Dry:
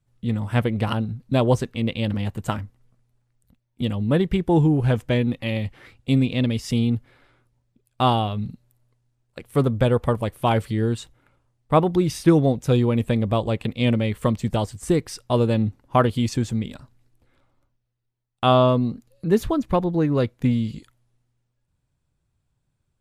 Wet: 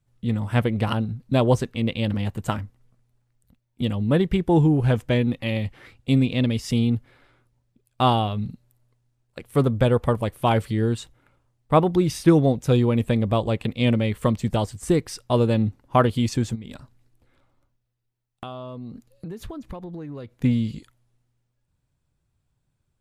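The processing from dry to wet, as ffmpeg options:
ffmpeg -i in.wav -filter_complex "[0:a]asplit=3[link_01][link_02][link_03];[link_01]afade=type=out:start_time=16.54:duration=0.02[link_04];[link_02]acompressor=threshold=-31dB:ratio=16:attack=3.2:release=140:knee=1:detection=peak,afade=type=in:start_time=16.54:duration=0.02,afade=type=out:start_time=20.4:duration=0.02[link_05];[link_03]afade=type=in:start_time=20.4:duration=0.02[link_06];[link_04][link_05][link_06]amix=inputs=3:normalize=0" out.wav

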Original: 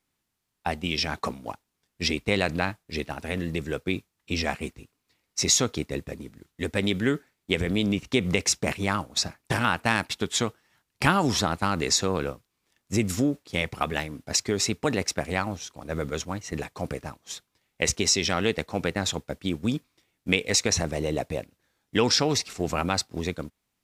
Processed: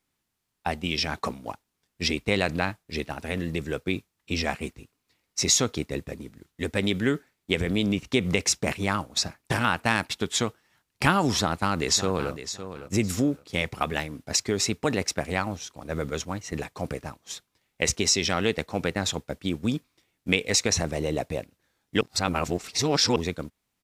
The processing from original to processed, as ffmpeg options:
ffmpeg -i in.wav -filter_complex "[0:a]asplit=2[link_01][link_02];[link_02]afade=type=in:start_time=11.32:duration=0.01,afade=type=out:start_time=12.32:duration=0.01,aecho=0:1:560|1120|1680:0.266073|0.0532145|0.0106429[link_03];[link_01][link_03]amix=inputs=2:normalize=0,asplit=3[link_04][link_05][link_06];[link_04]atrim=end=22.012[link_07];[link_05]atrim=start=22.008:end=23.162,asetpts=PTS-STARTPTS,areverse[link_08];[link_06]atrim=start=23.158[link_09];[link_07][link_08]acrossfade=duration=0.004:curve1=hsin:curve2=hsin[link_10];[link_10][link_09]acrossfade=duration=0.004:curve1=hsin:curve2=hsin" out.wav

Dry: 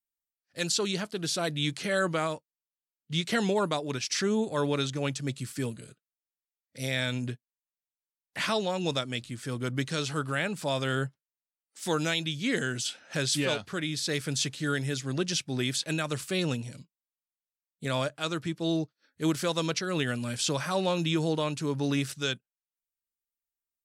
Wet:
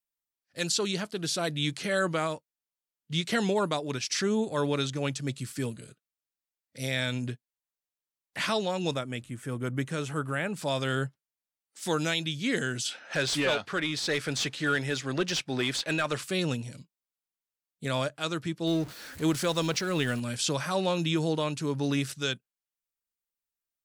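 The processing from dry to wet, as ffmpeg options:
ffmpeg -i in.wav -filter_complex "[0:a]asettb=1/sr,asplit=3[link_01][link_02][link_03];[link_01]atrim=end=8.944[link_04];[link_02]atrim=start=8.94:end=10.54,asetpts=PTS-STARTPTS,afade=type=in:duration=0.004:curve=qsin,afade=type=out:start_time=1.596:duration=0.004:curve=qsin,equalizer=frequency=4500:width_type=o:width=0.95:gain=-14[link_05];[link_03]atrim=start=10.536[link_06];[link_04][link_05]acrossfade=duration=0.004:curve1=hsin:curve2=qsin[link_07];[link_07][link_06]acrossfade=duration=0.004:curve1=qsin:curve2=hsin,asettb=1/sr,asplit=3[link_08][link_09][link_10];[link_08]atrim=end=12.914[link_11];[link_09]atrim=start=12.91:end=16.24,asetpts=PTS-STARTPTS,afade=type=in:duration=0.004:curve=qsin,afade=type=out:start_time=3.326:duration=0.004:curve=qsin,asplit=2[link_12][link_13];[link_13]highpass=frequency=720:poles=1,volume=14dB,asoftclip=type=tanh:threshold=-15dB[link_14];[link_12][link_14]amix=inputs=2:normalize=0,lowpass=frequency=2300:poles=1,volume=-6dB[link_15];[link_10]atrim=start=16.236[link_16];[link_11][link_15]acrossfade=duration=0.004:curve1=hsin:curve2=qsin[link_17];[link_17][link_16]acrossfade=duration=0.004:curve1=qsin:curve2=hsin,asettb=1/sr,asplit=3[link_18][link_19][link_20];[link_18]atrim=end=18.674[link_21];[link_19]atrim=start=18.67:end=20.2,asetpts=PTS-STARTPTS,afade=type=in:duration=0.004:curve=qsin,afade=type=out:start_time=1.526:duration=0.004:curve=qsin,aeval=exprs='val(0)+0.5*0.0119*sgn(val(0))':channel_layout=same[link_22];[link_20]atrim=start=20.196[link_23];[link_21][link_22]acrossfade=duration=0.004:curve1=hsin:curve2=qsin[link_24];[link_24][link_23]acrossfade=duration=0.004:curve1=qsin:curve2=hsin" out.wav

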